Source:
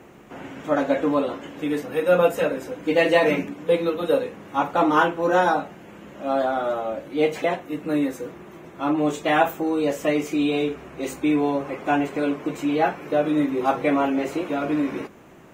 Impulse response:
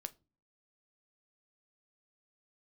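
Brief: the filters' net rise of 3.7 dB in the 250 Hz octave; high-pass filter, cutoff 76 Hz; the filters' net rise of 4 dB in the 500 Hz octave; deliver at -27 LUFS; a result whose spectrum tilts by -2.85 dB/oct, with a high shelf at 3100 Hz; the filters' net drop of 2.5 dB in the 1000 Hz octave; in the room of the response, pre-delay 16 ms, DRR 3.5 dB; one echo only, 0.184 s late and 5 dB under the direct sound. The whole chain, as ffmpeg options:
-filter_complex "[0:a]highpass=76,equalizer=f=250:t=o:g=3,equalizer=f=500:t=o:g=5.5,equalizer=f=1k:t=o:g=-7,highshelf=f=3.1k:g=4.5,aecho=1:1:184:0.562,asplit=2[a][b];[1:a]atrim=start_sample=2205,adelay=16[c];[b][c]afir=irnorm=-1:irlink=0,volume=0dB[d];[a][d]amix=inputs=2:normalize=0,volume=-9.5dB"

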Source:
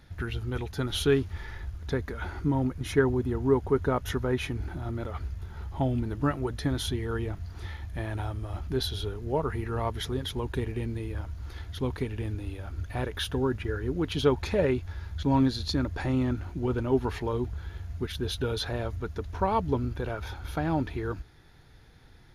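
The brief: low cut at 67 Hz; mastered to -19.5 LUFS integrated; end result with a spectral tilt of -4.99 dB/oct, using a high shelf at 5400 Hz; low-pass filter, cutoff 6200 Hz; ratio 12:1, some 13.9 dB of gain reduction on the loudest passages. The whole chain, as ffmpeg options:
-af "highpass=67,lowpass=6.2k,highshelf=f=5.4k:g=5.5,acompressor=threshold=-32dB:ratio=12,volume=18.5dB"

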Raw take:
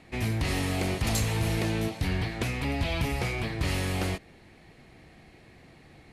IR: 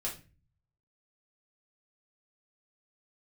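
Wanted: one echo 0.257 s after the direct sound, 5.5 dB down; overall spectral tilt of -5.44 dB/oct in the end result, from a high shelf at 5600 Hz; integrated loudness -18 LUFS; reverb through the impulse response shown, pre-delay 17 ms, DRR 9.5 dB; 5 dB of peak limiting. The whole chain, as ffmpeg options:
-filter_complex "[0:a]highshelf=f=5.6k:g=-7.5,alimiter=limit=-23dB:level=0:latency=1,aecho=1:1:257:0.531,asplit=2[a][b];[1:a]atrim=start_sample=2205,adelay=17[c];[b][c]afir=irnorm=-1:irlink=0,volume=-11.5dB[d];[a][d]amix=inputs=2:normalize=0,volume=12dB"

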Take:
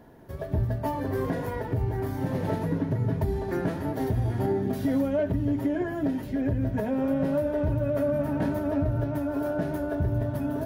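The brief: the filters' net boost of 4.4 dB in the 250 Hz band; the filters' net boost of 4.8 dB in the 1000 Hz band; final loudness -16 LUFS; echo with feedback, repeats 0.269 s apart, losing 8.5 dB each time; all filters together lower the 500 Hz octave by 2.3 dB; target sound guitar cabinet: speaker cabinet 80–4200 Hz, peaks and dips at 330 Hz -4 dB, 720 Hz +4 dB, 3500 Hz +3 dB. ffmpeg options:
-af "highpass=80,equalizer=f=330:t=q:w=4:g=-4,equalizer=f=720:t=q:w=4:g=4,equalizer=f=3.5k:t=q:w=4:g=3,lowpass=f=4.2k:w=0.5412,lowpass=f=4.2k:w=1.3066,equalizer=f=250:t=o:g=8.5,equalizer=f=500:t=o:g=-8,equalizer=f=1k:t=o:g=6.5,aecho=1:1:269|538|807|1076:0.376|0.143|0.0543|0.0206,volume=9dB"

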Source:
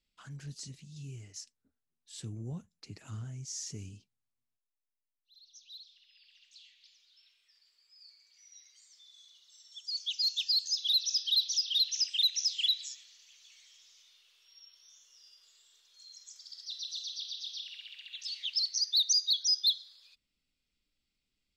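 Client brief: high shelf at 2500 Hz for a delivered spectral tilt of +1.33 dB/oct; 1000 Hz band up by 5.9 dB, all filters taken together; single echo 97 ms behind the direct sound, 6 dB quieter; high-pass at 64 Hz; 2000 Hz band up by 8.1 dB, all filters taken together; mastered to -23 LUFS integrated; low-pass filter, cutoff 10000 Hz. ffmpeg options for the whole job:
-af "highpass=64,lowpass=10k,equalizer=f=1k:t=o:g=4,equalizer=f=2k:t=o:g=5,highshelf=f=2.5k:g=9,aecho=1:1:97:0.501,volume=-2dB"

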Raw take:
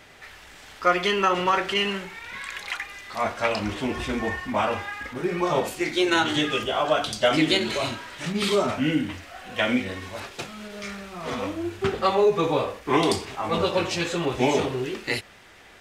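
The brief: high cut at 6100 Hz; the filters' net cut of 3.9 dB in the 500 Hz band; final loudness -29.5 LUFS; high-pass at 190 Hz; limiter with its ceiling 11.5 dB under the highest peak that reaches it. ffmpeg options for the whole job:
-af "highpass=190,lowpass=6.1k,equalizer=f=500:t=o:g=-5,volume=0.5dB,alimiter=limit=-18.5dB:level=0:latency=1"

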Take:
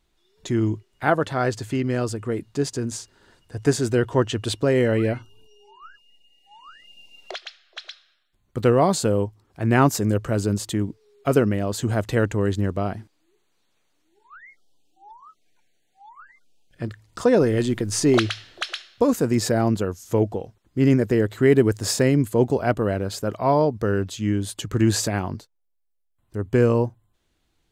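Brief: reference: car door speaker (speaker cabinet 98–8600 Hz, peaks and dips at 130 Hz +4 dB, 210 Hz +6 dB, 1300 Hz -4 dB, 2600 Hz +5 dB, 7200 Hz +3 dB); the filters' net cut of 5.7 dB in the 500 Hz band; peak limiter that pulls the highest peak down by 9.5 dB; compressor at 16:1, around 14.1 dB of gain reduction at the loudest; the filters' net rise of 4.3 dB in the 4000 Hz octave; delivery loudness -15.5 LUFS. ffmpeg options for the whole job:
-af "equalizer=f=500:t=o:g=-7.5,equalizer=f=4k:t=o:g=4.5,acompressor=threshold=-29dB:ratio=16,alimiter=level_in=3dB:limit=-24dB:level=0:latency=1,volume=-3dB,highpass=98,equalizer=f=130:t=q:w=4:g=4,equalizer=f=210:t=q:w=4:g=6,equalizer=f=1.3k:t=q:w=4:g=-4,equalizer=f=2.6k:t=q:w=4:g=5,equalizer=f=7.2k:t=q:w=4:g=3,lowpass=f=8.6k:w=0.5412,lowpass=f=8.6k:w=1.3066,volume=20.5dB"

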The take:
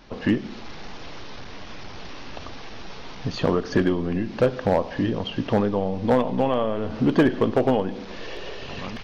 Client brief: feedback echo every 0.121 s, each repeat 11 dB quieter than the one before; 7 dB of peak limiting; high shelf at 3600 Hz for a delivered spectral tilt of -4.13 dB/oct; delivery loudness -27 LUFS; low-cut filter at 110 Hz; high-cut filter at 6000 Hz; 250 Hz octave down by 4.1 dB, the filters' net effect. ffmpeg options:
-af "highpass=110,lowpass=6k,equalizer=f=250:t=o:g=-5,highshelf=f=3.6k:g=9,alimiter=limit=-13.5dB:level=0:latency=1,aecho=1:1:121|242|363:0.282|0.0789|0.0221,volume=2dB"

